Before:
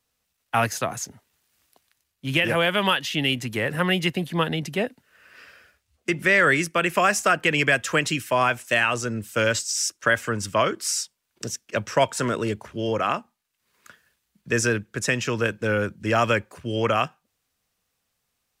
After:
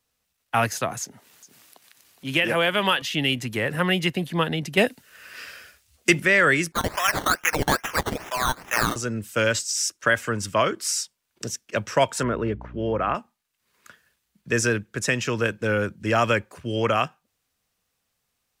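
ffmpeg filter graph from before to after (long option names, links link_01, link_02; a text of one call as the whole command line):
ffmpeg -i in.wav -filter_complex "[0:a]asettb=1/sr,asplit=3[link_01][link_02][link_03];[link_01]atrim=end=1.014[link_04];[link_02]atrim=start=1.01:end=3.02,asetpts=PTS-STARTPTS,afade=type=in:duration=0.004:curve=qsin,afade=type=out:start_time=2.006:duration=0.004:curve=qsin,highpass=170,aecho=1:1:416:0.0668,atrim=end_sample=88641,acompressor=mode=upward:threshold=-39dB:ratio=2.5:attack=3.2:release=140:knee=2.83:detection=peak[link_05];[link_03]atrim=start=3.016[link_06];[link_04][link_05]acrossfade=duration=0.004:curve1=hsin:curve2=qsin[link_07];[link_07][link_06]acrossfade=duration=0.004:curve1=qsin:curve2=hsin,asettb=1/sr,asplit=3[link_08][link_09][link_10];[link_08]atrim=end=4.774[link_11];[link_09]atrim=start=4.77:end=6.2,asetpts=PTS-STARTPTS,afade=type=in:duration=0.004:curve=qsin,afade=type=out:start_time=1.426:duration=0.004:curve=qsin,highshelf=frequency=3000:gain=10.5,acontrast=21[link_12];[link_10]atrim=start=6.196[link_13];[link_11][link_12]acrossfade=duration=0.004:curve1=hsin:curve2=qsin[link_14];[link_14][link_13]acrossfade=duration=0.004:curve1=qsin:curve2=hsin,asettb=1/sr,asplit=3[link_15][link_16][link_17];[link_15]atrim=end=6.724[link_18];[link_16]atrim=start=6.72:end=8.96,asetpts=PTS-STARTPTS,afade=type=in:duration=0.004:curve=qsin,afade=type=out:start_time=2.236:duration=0.004:curve=qsin,highpass=1100,acrusher=samples=14:mix=1:aa=0.000001:lfo=1:lforange=8.4:lforate=2.4[link_19];[link_17]atrim=start=8.956[link_20];[link_18][link_19]acrossfade=duration=0.004:curve1=hsin:curve2=qsin[link_21];[link_21][link_20]acrossfade=duration=0.004:curve1=qsin:curve2=hsin,asettb=1/sr,asplit=3[link_22][link_23][link_24];[link_22]atrim=end=12.234[link_25];[link_23]atrim=start=12.23:end=13.15,asetpts=PTS-STARTPTS,afade=type=in:duration=0.004:curve=qsin,afade=type=out:start_time=0.916:duration=0.004:curve=qsin,lowpass=1900,aeval=exprs='val(0)+0.0112*(sin(2*PI*60*n/s)+sin(2*PI*2*60*n/s)/2+sin(2*PI*3*60*n/s)/3+sin(2*PI*4*60*n/s)/4+sin(2*PI*5*60*n/s)/5)':channel_layout=same[link_26];[link_24]atrim=start=13.146[link_27];[link_25][link_26]acrossfade=duration=0.004:curve1=hsin:curve2=qsin[link_28];[link_28][link_27]acrossfade=duration=0.004:curve1=qsin:curve2=hsin" out.wav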